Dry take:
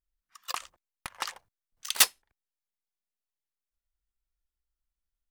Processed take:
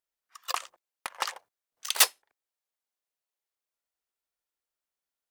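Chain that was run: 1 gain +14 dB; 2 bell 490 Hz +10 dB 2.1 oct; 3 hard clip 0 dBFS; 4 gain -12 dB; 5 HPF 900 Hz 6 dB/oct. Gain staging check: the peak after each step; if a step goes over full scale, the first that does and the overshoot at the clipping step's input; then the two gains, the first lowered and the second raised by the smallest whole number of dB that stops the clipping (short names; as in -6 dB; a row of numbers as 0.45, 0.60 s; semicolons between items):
+7.5, +8.5, 0.0, -12.0, -9.0 dBFS; step 1, 8.5 dB; step 1 +5 dB, step 4 -3 dB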